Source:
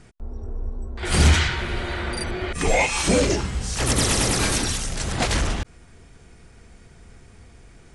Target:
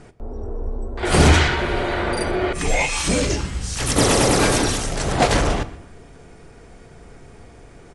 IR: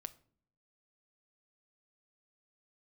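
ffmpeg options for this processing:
-filter_complex "[0:a]asetnsamples=nb_out_samples=441:pad=0,asendcmd='2.55 equalizer g -4;3.96 equalizer g 9',equalizer=frequency=540:width_type=o:width=2.5:gain=9.5,asplit=2[link_01][link_02];[link_02]adelay=125,lowpass=frequency=4500:poles=1,volume=-19dB,asplit=2[link_03][link_04];[link_04]adelay=125,lowpass=frequency=4500:poles=1,volume=0.41,asplit=2[link_05][link_06];[link_06]adelay=125,lowpass=frequency=4500:poles=1,volume=0.41[link_07];[link_01][link_03][link_05][link_07]amix=inputs=4:normalize=0[link_08];[1:a]atrim=start_sample=2205,asetrate=41454,aresample=44100[link_09];[link_08][link_09]afir=irnorm=-1:irlink=0,volume=5dB"

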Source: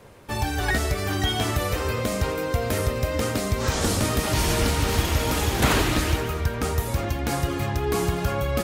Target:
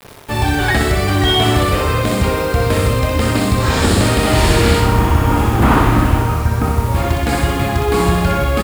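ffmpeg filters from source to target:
ffmpeg -i in.wav -filter_complex "[0:a]acrossover=split=9300[link_01][link_02];[link_02]acompressor=threshold=-52dB:ratio=4:attack=1:release=60[link_03];[link_01][link_03]amix=inputs=2:normalize=0,asettb=1/sr,asplit=3[link_04][link_05][link_06];[link_04]atrim=end=4.804[link_07];[link_05]atrim=start=4.8:end=6.95,asetpts=PTS-STARTPTS,afade=type=in:duration=0.004:curve=qsin,afade=type=out:start_time=2.146:duration=0.004:curve=qsin,equalizer=frequency=250:width_type=o:width=1:gain=3,equalizer=frequency=500:width_type=o:width=1:gain=-6,equalizer=frequency=1000:width_type=o:width=1:gain=5,equalizer=frequency=2000:width_type=o:width=1:gain=-5,equalizer=frequency=4000:width_type=o:width=1:gain=-12,equalizer=frequency=8000:width_type=o:width=1:gain=-10[link_08];[link_06]atrim=start=6.946[link_09];[link_07][link_08]acrossfade=duration=0.004:curve1=hsin:curve2=qsin[link_10];[link_10][link_09]acrossfade=duration=0.004:curve1=qsin:curve2=hsin,acontrast=88,equalizer=frequency=6000:width=4.2:gain=-11.5,asplit=2[link_11][link_12];[link_12]adelay=27,volume=-11dB[link_13];[link_11][link_13]amix=inputs=2:normalize=0,acrusher=bits=5:mix=0:aa=0.000001,aecho=1:1:62|124|186|248|310|372|434|496|558:0.631|0.379|0.227|0.136|0.0818|0.0491|0.0294|0.0177|0.0106,volume=1dB" out.wav

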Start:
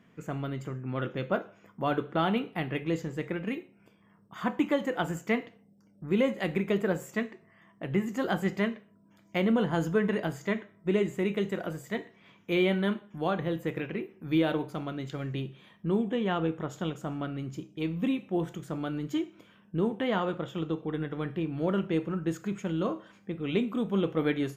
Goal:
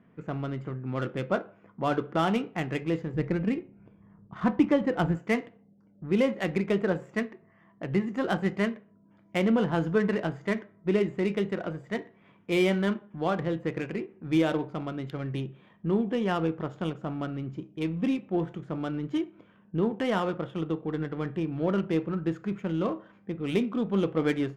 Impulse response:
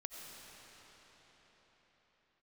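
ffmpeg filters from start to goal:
-filter_complex "[0:a]asettb=1/sr,asplit=3[link_01][link_02][link_03];[link_01]atrim=end=3.144[link_04];[link_02]atrim=start=3.14:end=5.15,asetpts=PTS-STARTPTS,afade=type=in:duration=0.004:curve=qsin,afade=type=out:start_time=2.006:duration=0.004:curve=qsin,aemphasis=mode=reproduction:type=bsi[link_05];[link_03]atrim=start=5.146[link_06];[link_04][link_05]acrossfade=duration=0.004:curve1=hsin:curve2=qsin[link_07];[link_07][link_06]acrossfade=duration=0.004:curve1=qsin:curve2=hsin,adynamicsmooth=sensitivity=7.5:basefreq=1900,volume=1.5dB"

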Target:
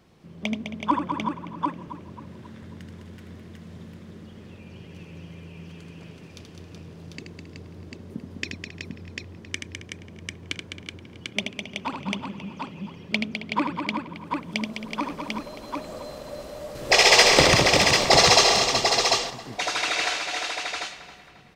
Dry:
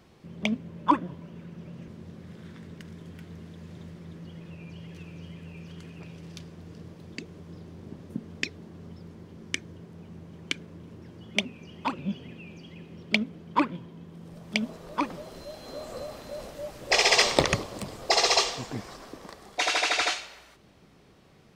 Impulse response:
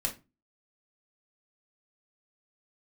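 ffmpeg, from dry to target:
-filter_complex "[0:a]asplit=2[link_01][link_02];[link_02]adelay=270,lowpass=frequency=3700:poles=1,volume=-13.5dB,asplit=2[link_03][link_04];[link_04]adelay=270,lowpass=frequency=3700:poles=1,volume=0.52,asplit=2[link_05][link_06];[link_06]adelay=270,lowpass=frequency=3700:poles=1,volume=0.52,asplit=2[link_07][link_08];[link_08]adelay=270,lowpass=frequency=3700:poles=1,volume=0.52,asplit=2[link_09][link_10];[link_10]adelay=270,lowpass=frequency=3700:poles=1,volume=0.52[link_11];[link_03][link_05][link_07][link_09][link_11]amix=inputs=5:normalize=0[link_12];[link_01][link_12]amix=inputs=2:normalize=0,asettb=1/sr,asplit=3[link_13][link_14][link_15];[link_13]atrim=end=16.754[link_16];[link_14]atrim=start=16.75:end=18.56,asetpts=PTS-STARTPTS,afade=type=in:duration=0.004:curve=qsin,afade=type=out:start_time=1.806:duration=0.004:curve=qsin,acontrast=79[link_17];[link_15]atrim=start=18.556[link_18];[link_16][link_17]acrossfade=duration=0.004:curve1=hsin:curve2=qsin[link_19];[link_19][link_18]acrossfade=duration=0.004:curve1=qsin:curve2=hsin,asplit=2[link_20][link_21];[link_21]aecho=0:1:79|206|375|745:0.473|0.447|0.473|0.631[link_22];[link_20][link_22]amix=inputs=2:normalize=0,volume=-1.5dB"

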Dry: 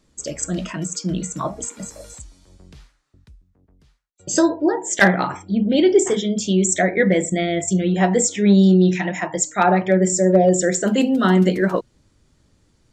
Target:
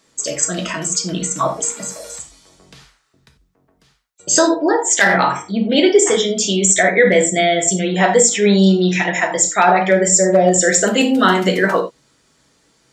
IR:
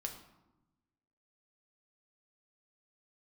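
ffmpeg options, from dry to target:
-filter_complex "[0:a]highpass=frequency=660:poles=1[link_01];[1:a]atrim=start_sample=2205,atrim=end_sample=4410[link_02];[link_01][link_02]afir=irnorm=-1:irlink=0,alimiter=level_in=12.5dB:limit=-1dB:release=50:level=0:latency=1,volume=-1dB"

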